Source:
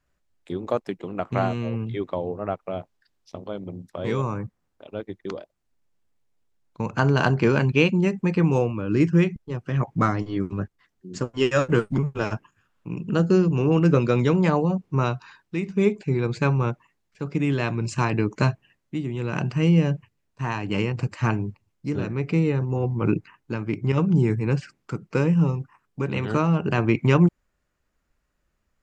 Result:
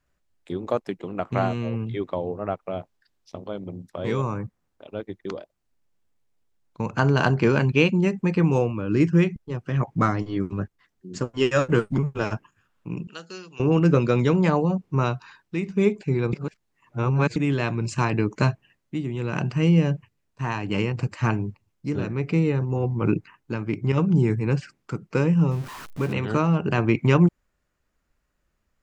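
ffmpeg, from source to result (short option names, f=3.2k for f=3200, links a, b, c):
-filter_complex "[0:a]asettb=1/sr,asplit=3[a][b][c];[a]atrim=end=13.074[d];[b]atrim=start=13.07:end=13.6,asetpts=PTS-STARTPTS,afade=t=in:d=0.004:c=qsin,afade=t=out:st=0.526:d=0.004:c=qsin,bandpass=f=4.2k:t=q:w=1[e];[c]atrim=start=13.596[f];[d][e]acrossfade=d=0.004:c1=hsin:c2=qsin[g];[g][f]acrossfade=d=0.004:c1=qsin:c2=hsin,asettb=1/sr,asplit=3[h][i][j];[h]atrim=end=25.514[k];[i]atrim=start=25.51:end=26.13,asetpts=PTS-STARTPTS,afade=t=in:d=0.004:c=qsin,afade=t=out:st=0.616:d=0.004:c=qsin,aeval=exprs='val(0)+0.5*0.0211*sgn(val(0))':c=same[l];[j]atrim=start=26.126[m];[k][l]acrossfade=d=0.004:c1=hsin:c2=qsin[n];[n][m]acrossfade=d=0.004:c1=qsin:c2=hsin,asplit=3[o][p][q];[o]atrim=end=16.332[r];[p]atrim=start=16.328:end=17.362,asetpts=PTS-STARTPTS,areverse[s];[q]atrim=start=17.358[t];[r][s]acrossfade=d=0.004:c1=hsin:c2=hsin[u];[u][t]acrossfade=d=0.004:c1=hsin:c2=hsin"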